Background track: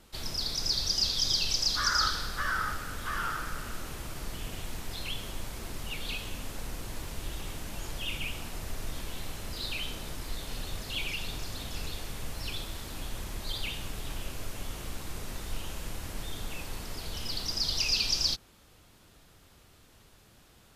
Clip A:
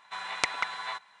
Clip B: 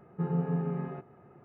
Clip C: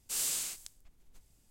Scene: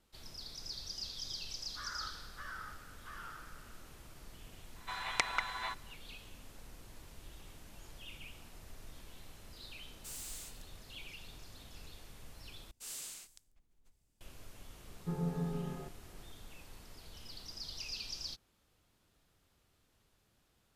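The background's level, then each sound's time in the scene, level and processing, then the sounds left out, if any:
background track −15 dB
0:04.76: mix in A −4 dB
0:09.95: mix in C −7 dB + soft clipping −36.5 dBFS
0:12.71: overwrite with C −9.5 dB + high-shelf EQ 6,500 Hz −4 dB
0:14.88: mix in B −6.5 dB

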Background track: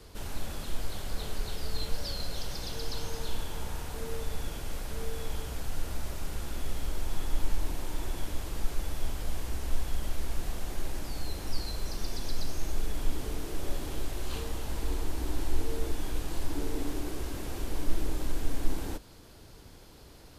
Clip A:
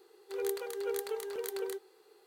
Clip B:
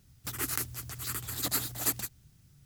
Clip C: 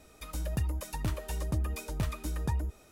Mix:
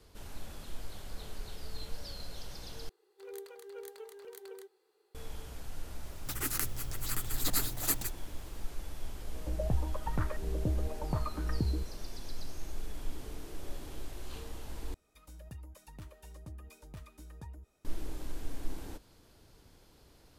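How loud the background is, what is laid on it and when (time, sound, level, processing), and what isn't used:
background track −8.5 dB
0:02.89: overwrite with A −11 dB
0:06.02: mix in B −1.5 dB
0:09.13: mix in C −1.5 dB + auto-filter low-pass saw up 0.81 Hz 330–1,800 Hz
0:14.94: overwrite with C −16 dB

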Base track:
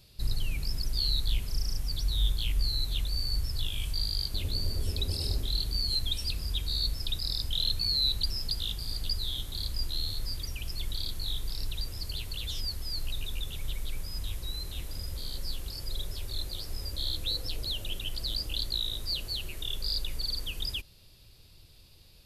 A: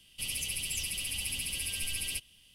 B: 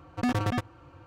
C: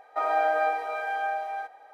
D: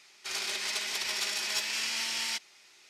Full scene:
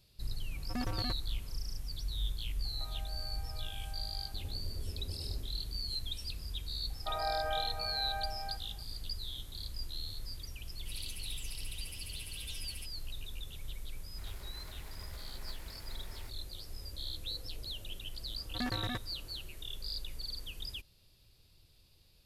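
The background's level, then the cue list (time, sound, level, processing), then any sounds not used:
base track −8.5 dB
0:00.52: mix in B −11 dB
0:02.65: mix in C −11.5 dB + downward compressor 12 to 1, threshold −39 dBFS
0:06.90: mix in C −11 dB
0:10.67: mix in A −12.5 dB
0:13.92: mix in D −14 dB + running median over 15 samples
0:18.37: mix in B −10.5 dB + parametric band 1,800 Hz +7 dB 0.46 octaves

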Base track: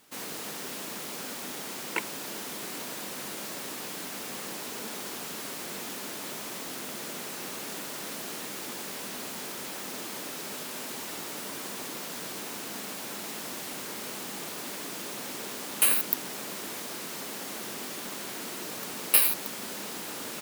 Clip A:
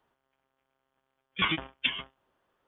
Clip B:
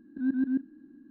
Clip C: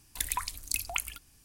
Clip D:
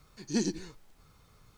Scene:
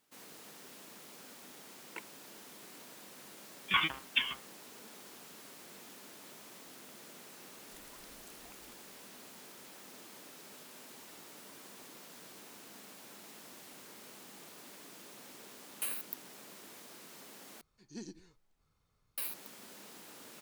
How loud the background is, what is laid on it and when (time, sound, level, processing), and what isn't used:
base track −15 dB
0:02.32: mix in A −2 dB + low shelf with overshoot 770 Hz −7 dB, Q 1.5
0:07.56: mix in C −17.5 dB + downward compressor, threshold −38 dBFS
0:17.61: overwrite with D −16.5 dB
not used: B

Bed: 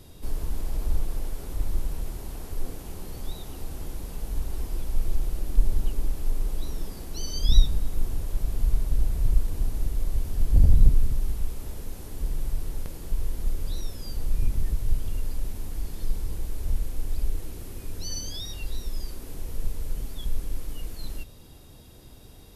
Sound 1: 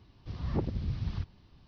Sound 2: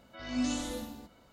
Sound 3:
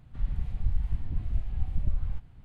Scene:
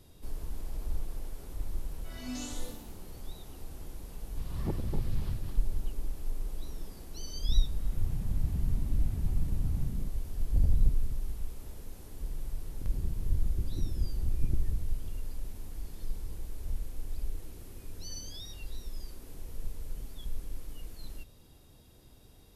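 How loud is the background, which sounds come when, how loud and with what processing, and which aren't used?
bed −8.5 dB
0:01.91: mix in 2 −8.5 dB + high-shelf EQ 4,400 Hz +8.5 dB
0:04.11: mix in 1 −4.5 dB + feedback delay that plays each chunk backwards 142 ms, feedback 49%, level −4 dB
0:07.65: mix in 3 −5.5 dB + echo with shifted repeats 118 ms, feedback 50%, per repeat +58 Hz, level −6 dB
0:12.66: mix in 3 −2.5 dB + low-pass with resonance 360 Hz, resonance Q 4

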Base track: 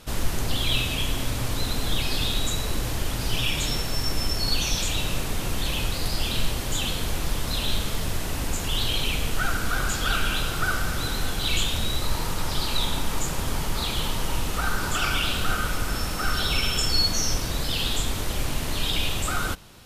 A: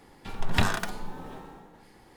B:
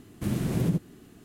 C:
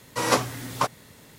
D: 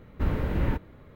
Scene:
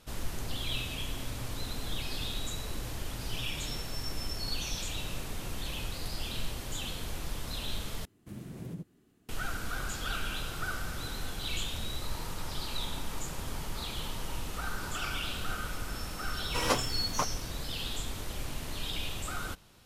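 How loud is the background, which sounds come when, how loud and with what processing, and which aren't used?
base track −10.5 dB
0:08.05: overwrite with B −15.5 dB
0:16.38: mix in C −7 dB + mu-law and A-law mismatch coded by A
not used: A, D

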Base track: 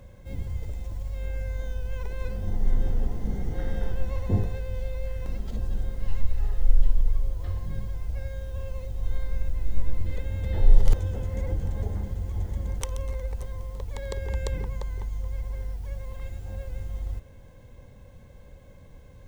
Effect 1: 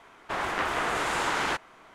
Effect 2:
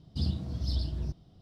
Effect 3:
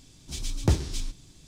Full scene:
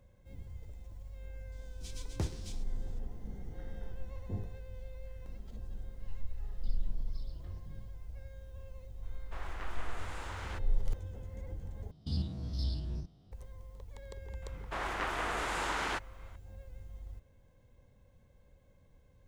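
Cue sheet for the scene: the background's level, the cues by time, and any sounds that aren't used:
base track −14.5 dB
0:01.52: mix in 3 −12.5 dB
0:06.48: mix in 2 −6 dB + downward compressor, threshold −43 dBFS
0:09.02: mix in 1 −17.5 dB
0:11.91: overwrite with 2 −3 dB + spectrum averaged block by block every 50 ms
0:14.42: mix in 1 −7 dB

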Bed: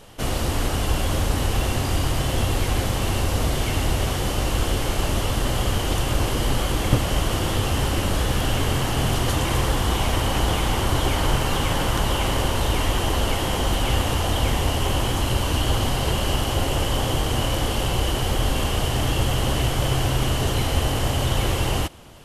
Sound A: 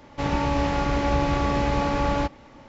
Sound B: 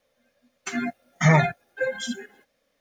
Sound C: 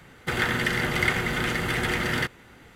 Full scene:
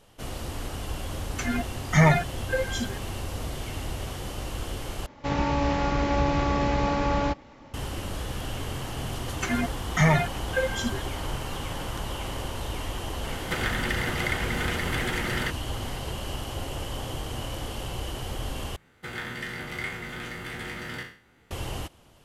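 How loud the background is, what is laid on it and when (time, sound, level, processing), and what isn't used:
bed −11 dB
0:00.72: mix in B −1 dB
0:05.06: overwrite with A −1.5 dB
0:08.76: mix in B −0.5 dB + multiband upward and downward compressor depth 40%
0:13.24: mix in C −4 dB + multiband upward and downward compressor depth 70%
0:18.76: overwrite with C −12 dB + peak hold with a decay on every bin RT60 0.45 s

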